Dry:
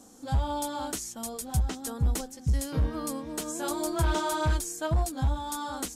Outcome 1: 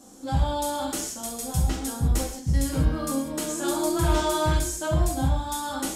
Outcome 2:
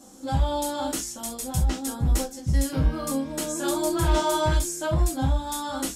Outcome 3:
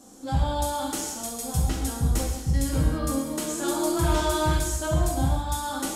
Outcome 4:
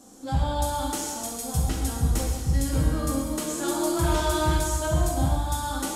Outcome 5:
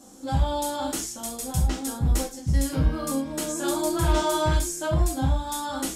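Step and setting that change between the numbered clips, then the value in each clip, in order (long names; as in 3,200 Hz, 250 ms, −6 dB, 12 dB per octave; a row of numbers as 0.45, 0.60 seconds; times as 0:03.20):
reverb whose tail is shaped and stops, gate: 220, 90, 360, 520, 130 milliseconds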